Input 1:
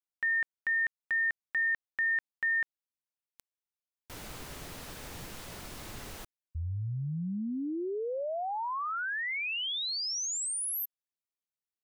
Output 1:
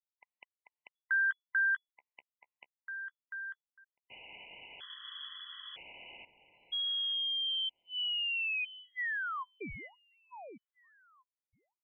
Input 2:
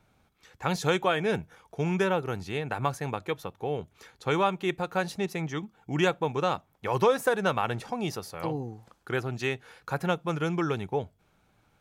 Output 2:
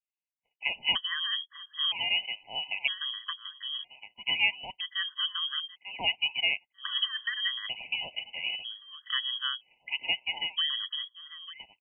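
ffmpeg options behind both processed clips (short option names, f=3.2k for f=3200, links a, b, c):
-filter_complex "[0:a]adynamicequalizer=threshold=0.00631:dfrequency=2200:dqfactor=2:tfrequency=2200:tqfactor=2:attack=5:release=100:ratio=0.375:range=2.5:mode=cutabove:tftype=bell,agate=range=-33dB:threshold=-47dB:ratio=3:release=26:detection=peak,lowpass=f=2.9k:t=q:w=0.5098,lowpass=f=2.9k:t=q:w=0.6013,lowpass=f=2.9k:t=q:w=0.9,lowpass=f=2.9k:t=q:w=2.563,afreqshift=-3400,asplit=2[a][b];[b]adelay=894,lowpass=f=1.6k:p=1,volume=-9dB,asplit=2[c][d];[d]adelay=894,lowpass=f=1.6k:p=1,volume=0.17,asplit=2[e][f];[f]adelay=894,lowpass=f=1.6k:p=1,volume=0.17[g];[c][e][g]amix=inputs=3:normalize=0[h];[a][h]amix=inputs=2:normalize=0,afftfilt=real='re*gt(sin(2*PI*0.52*pts/sr)*(1-2*mod(floor(b*sr/1024/1000),2)),0)':imag='im*gt(sin(2*PI*0.52*pts/sr)*(1-2*mod(floor(b*sr/1024/1000),2)),0)':win_size=1024:overlap=0.75"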